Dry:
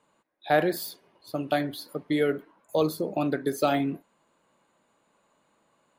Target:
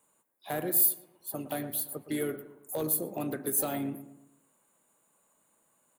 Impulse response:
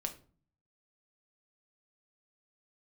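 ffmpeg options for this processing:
-filter_complex "[0:a]acrossover=split=370[a][b];[b]acompressor=threshold=-28dB:ratio=2.5[c];[a][c]amix=inputs=2:normalize=0,asplit=3[d][e][f];[e]asetrate=35002,aresample=44100,atempo=1.25992,volume=-13dB[g];[f]asetrate=58866,aresample=44100,atempo=0.749154,volume=-17dB[h];[d][g][h]amix=inputs=3:normalize=0,asoftclip=type=hard:threshold=-18dB,aexciter=amount=9:drive=6.6:freq=7.4k,asplit=2[i][j];[j]adelay=115,lowpass=f=1.8k:p=1,volume=-12dB,asplit=2[k][l];[l]adelay=115,lowpass=f=1.8k:p=1,volume=0.45,asplit=2[m][n];[n]adelay=115,lowpass=f=1.8k:p=1,volume=0.45,asplit=2[o][p];[p]adelay=115,lowpass=f=1.8k:p=1,volume=0.45,asplit=2[q][r];[r]adelay=115,lowpass=f=1.8k:p=1,volume=0.45[s];[k][m][o][q][s]amix=inputs=5:normalize=0[t];[i][t]amix=inputs=2:normalize=0,volume=-7dB"

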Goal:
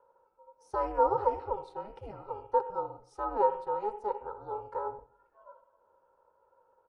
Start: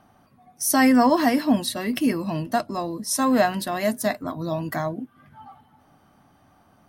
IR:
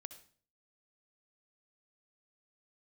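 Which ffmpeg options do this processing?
-filter_complex "[0:a]asplit=3[a][b][c];[a]bandpass=f=730:t=q:w=8,volume=0dB[d];[b]bandpass=f=1.09k:t=q:w=8,volume=-6dB[e];[c]bandpass=f=2.44k:t=q:w=8,volume=-9dB[f];[d][e][f]amix=inputs=3:normalize=0,asplit=2[g][h];[h]bass=f=250:g=-5,treble=f=4k:g=-14[i];[1:a]atrim=start_sample=2205,lowpass=2.1k[j];[i][j]afir=irnorm=-1:irlink=0,volume=11dB[k];[g][k]amix=inputs=2:normalize=0,aeval=exprs='val(0)*sin(2*PI*210*n/s)':c=same,aresample=22050,aresample=44100,volume=-7dB"

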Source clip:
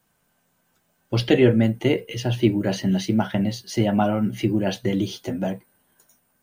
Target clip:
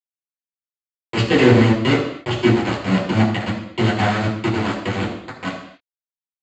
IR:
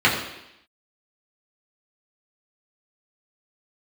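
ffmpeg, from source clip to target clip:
-filter_complex "[0:a]bandreject=f=50:t=h:w=6,bandreject=f=100:t=h:w=6,bandreject=f=150:t=h:w=6,bandreject=f=200:t=h:w=6,aresample=16000,aeval=exprs='val(0)*gte(abs(val(0)),0.126)':c=same,aresample=44100[a];[1:a]atrim=start_sample=2205,afade=t=out:st=0.34:d=0.01,atrim=end_sample=15435[b];[a][b]afir=irnorm=-1:irlink=0,volume=-15.5dB"

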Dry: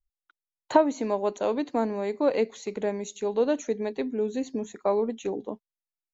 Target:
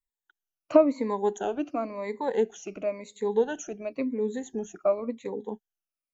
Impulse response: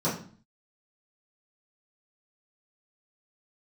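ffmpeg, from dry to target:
-af "afftfilt=real='re*pow(10,19/40*sin(2*PI*(0.98*log(max(b,1)*sr/1024/100)/log(2)-(-0.95)*(pts-256)/sr)))':imag='im*pow(10,19/40*sin(2*PI*(0.98*log(max(b,1)*sr/1024/100)/log(2)-(-0.95)*(pts-256)/sr)))':win_size=1024:overlap=0.75,equalizer=f=4.2k:w=3.1:g=-7.5,volume=-5dB"

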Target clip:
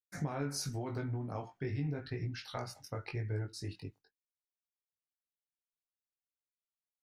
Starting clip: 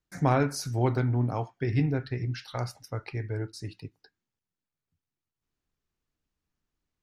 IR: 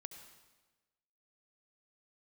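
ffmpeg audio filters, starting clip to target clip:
-af "agate=range=-33dB:threshold=-47dB:ratio=3:detection=peak,alimiter=limit=-21dB:level=0:latency=1:release=138,acompressor=threshold=-31dB:ratio=6,flanger=delay=19:depth=2.4:speed=0.92,volume=1dB"

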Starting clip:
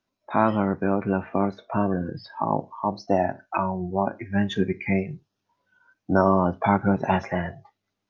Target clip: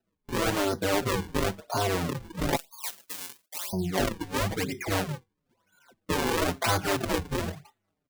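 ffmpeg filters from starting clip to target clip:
-filter_complex "[0:a]asettb=1/sr,asplit=3[a][b][c];[a]atrim=end=7.054[d];[b]atrim=start=7.05:end=7.48,asetpts=PTS-STARTPTS,afade=t=in:d=0.004:c=qsin,afade=t=out:st=0.426:d=0.004:c=qsin,lowpass=1.4k[e];[c]atrim=start=7.476[f];[d][e]acrossfade=d=0.004:c1=hsin:c2=qsin[g];[g][f]acrossfade=d=0.004:c1=qsin:c2=hsin,acrusher=samples=39:mix=1:aa=0.000001:lfo=1:lforange=62.4:lforate=1,asoftclip=type=hard:threshold=-13dB,asettb=1/sr,asplit=3[h][i][j];[h]atrim=end=2.564[k];[i]atrim=start=2.56:end=3.73,asetpts=PTS-STARTPTS,afade=t=in:d=0.004:c=qsin,afade=t=out:st=1.166:d=0.004:c=qsin,aderivative[l];[j]atrim=start=3.726[m];[k][l]acrossfade=d=0.004:c1=hsin:c2=qsin[n];[n][m]acrossfade=d=0.004:c1=qsin:c2=hsin,afftfilt=real='re*lt(hypot(re,im),0.398)':imag='im*lt(hypot(re,im),0.398)':win_size=1024:overlap=0.75,alimiter=level_in=11.5dB:limit=-1dB:release=50:level=0:latency=1,asplit=2[o][p];[p]adelay=5.4,afreqshift=-2.7[q];[o][q]amix=inputs=2:normalize=1,volume=-8dB"

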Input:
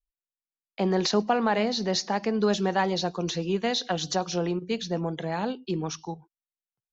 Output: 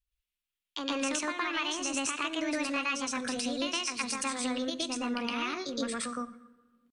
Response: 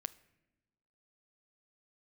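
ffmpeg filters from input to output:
-filter_complex "[0:a]equalizer=f=250:t=o:w=1:g=-5,equalizer=f=500:t=o:w=1:g=-11,equalizer=f=2k:t=o:w=1:g=10,equalizer=f=4k:t=o:w=1:g=-4,acompressor=threshold=-36dB:ratio=4,asetrate=64194,aresample=44100,atempo=0.686977,asplit=2[a][b];[1:a]atrim=start_sample=2205,asetrate=30429,aresample=44100,adelay=116[c];[b][c]afir=irnorm=-1:irlink=0,volume=4.5dB[d];[a][d]amix=inputs=2:normalize=0,volume=1dB"

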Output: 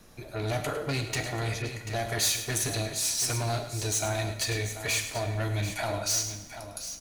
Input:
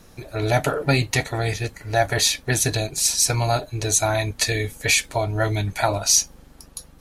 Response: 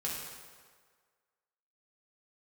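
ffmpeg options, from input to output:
-filter_complex "[0:a]acrossover=split=290|3000[a][b][c];[b]acompressor=threshold=-23dB:ratio=2[d];[a][d][c]amix=inputs=3:normalize=0,asoftclip=type=tanh:threshold=-19.5dB,aecho=1:1:104|738:0.266|0.282,asplit=2[e][f];[1:a]atrim=start_sample=2205,asetrate=57330,aresample=44100,lowshelf=f=210:g=-11.5[g];[f][g]afir=irnorm=-1:irlink=0,volume=-4.5dB[h];[e][h]amix=inputs=2:normalize=0,asettb=1/sr,asplit=3[i][j][k];[i]atrim=end=1.624[l];[j]atrim=start=1.62:end=2.58,asetpts=PTS-STARTPTS,afade=t=in:d=0.004:c=qsin,afade=t=out:st=0.956:d=0.004:c=qsin,adynamicequalizer=threshold=0.0224:dfrequency=6000:dqfactor=0.7:tfrequency=6000:tqfactor=0.7:attack=5:release=100:ratio=0.375:range=3:mode=boostabove:tftype=highshelf[m];[k]atrim=start=2.576[n];[l][m]acrossfade=d=0.004:c1=hsin:c2=qsin[o];[o][n]acrossfade=d=0.004:c1=qsin:c2=hsin,volume=-7dB"

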